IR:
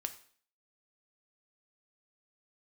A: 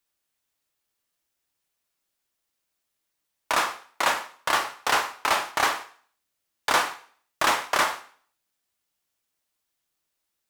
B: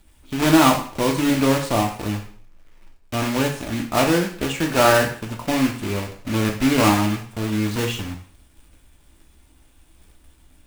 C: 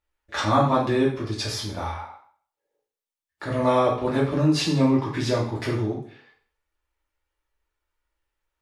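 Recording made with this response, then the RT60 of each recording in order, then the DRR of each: A; 0.50, 0.50, 0.50 s; 7.5, 1.5, -5.5 dB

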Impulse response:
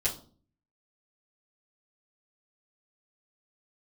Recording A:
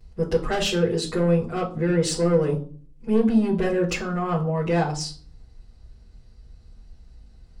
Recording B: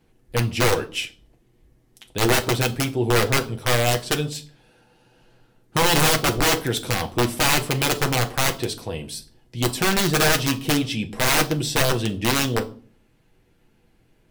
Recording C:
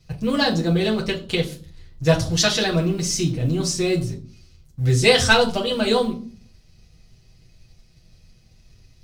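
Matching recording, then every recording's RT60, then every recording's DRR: A; 0.45, 0.45, 0.45 s; -10.0, 4.0, -3.5 dB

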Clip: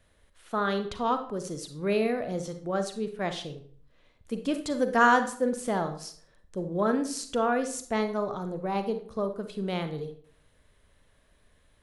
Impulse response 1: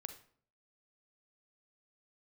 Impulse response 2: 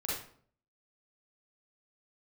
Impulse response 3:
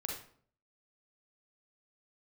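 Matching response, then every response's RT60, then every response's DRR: 1; 0.55, 0.55, 0.55 s; 8.0, -7.0, -1.0 dB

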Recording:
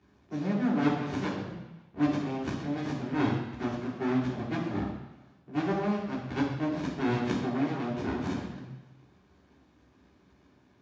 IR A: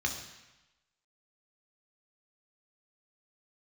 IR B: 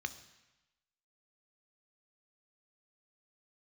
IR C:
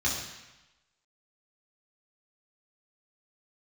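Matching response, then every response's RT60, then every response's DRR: C; 1.0, 1.0, 1.0 s; 1.5, 10.0, -6.0 dB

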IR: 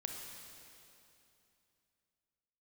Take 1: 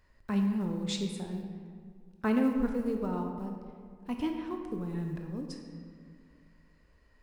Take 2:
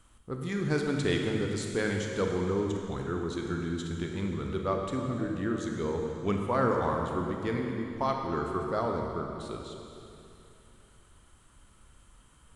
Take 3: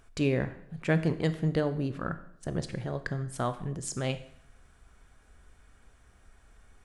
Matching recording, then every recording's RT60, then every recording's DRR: 2; 2.1, 2.8, 0.70 s; 3.0, 1.5, 10.5 dB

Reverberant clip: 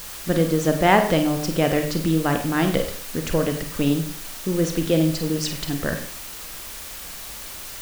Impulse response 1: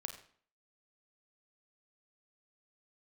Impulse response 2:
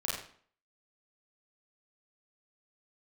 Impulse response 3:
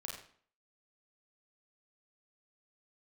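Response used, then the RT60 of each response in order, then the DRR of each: 1; 0.50, 0.50, 0.50 s; 5.0, -6.5, -2.5 dB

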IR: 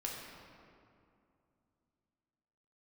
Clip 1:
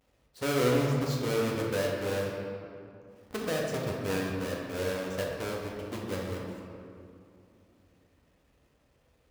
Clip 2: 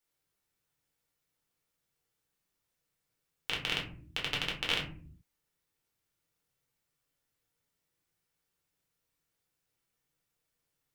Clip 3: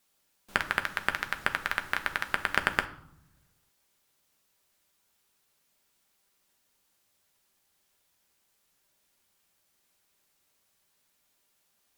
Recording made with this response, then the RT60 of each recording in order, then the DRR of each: 1; 2.5 s, not exponential, 0.75 s; -2.5, -3.0, 6.5 dB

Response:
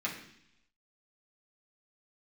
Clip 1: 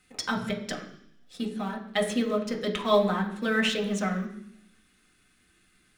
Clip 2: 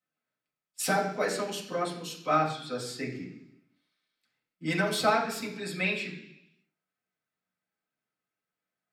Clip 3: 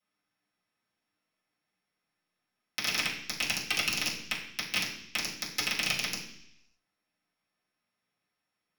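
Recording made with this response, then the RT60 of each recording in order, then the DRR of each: 2; 0.70, 0.70, 0.70 s; 0.0, -5.5, -10.5 dB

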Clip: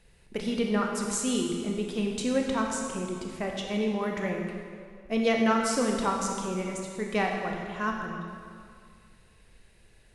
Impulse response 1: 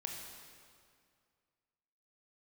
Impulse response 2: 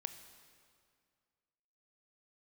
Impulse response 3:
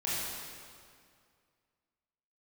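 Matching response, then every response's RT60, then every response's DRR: 1; 2.2, 2.1, 2.2 s; 0.5, 9.0, -9.0 dB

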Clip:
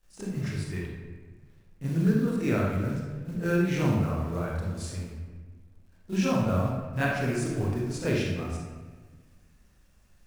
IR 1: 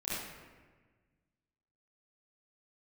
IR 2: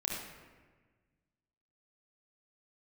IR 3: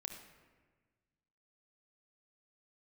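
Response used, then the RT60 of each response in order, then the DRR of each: 1; 1.4, 1.4, 1.4 s; -12.5, -4.0, 2.5 dB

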